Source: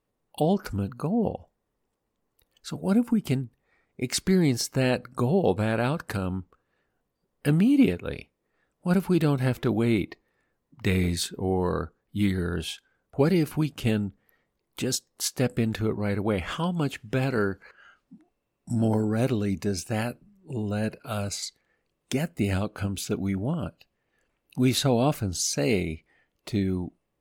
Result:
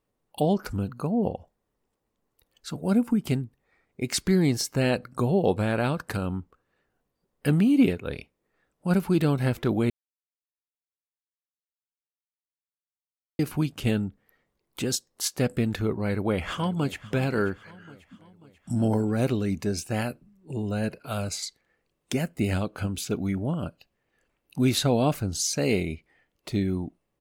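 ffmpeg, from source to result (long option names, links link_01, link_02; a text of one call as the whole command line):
ffmpeg -i in.wav -filter_complex "[0:a]asplit=2[link_01][link_02];[link_02]afade=type=in:start_time=16.02:duration=0.01,afade=type=out:start_time=17.08:duration=0.01,aecho=0:1:540|1080|1620|2160|2700:0.133352|0.0733437|0.040339|0.0221865|0.0122026[link_03];[link_01][link_03]amix=inputs=2:normalize=0,asplit=3[link_04][link_05][link_06];[link_04]atrim=end=9.9,asetpts=PTS-STARTPTS,afade=type=out:start_time=9.896:duration=0.004:curve=hsin[link_07];[link_05]atrim=start=9.9:end=13.39,asetpts=PTS-STARTPTS,volume=0[link_08];[link_06]atrim=start=13.39,asetpts=PTS-STARTPTS,afade=type=in:duration=0.004:curve=hsin[link_09];[link_07][link_08][link_09]concat=n=3:v=0:a=1" out.wav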